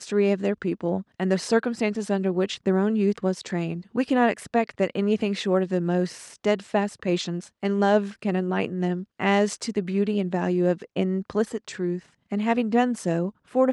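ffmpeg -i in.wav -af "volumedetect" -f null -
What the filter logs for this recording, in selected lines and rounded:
mean_volume: -24.5 dB
max_volume: -7.7 dB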